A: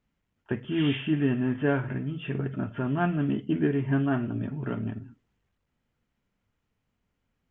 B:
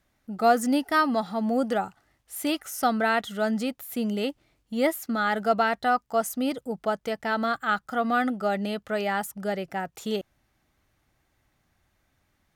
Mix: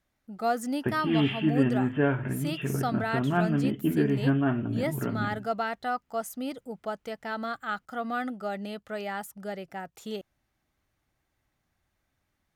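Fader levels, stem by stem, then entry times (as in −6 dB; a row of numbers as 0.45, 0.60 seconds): +0.5, −7.0 decibels; 0.35, 0.00 seconds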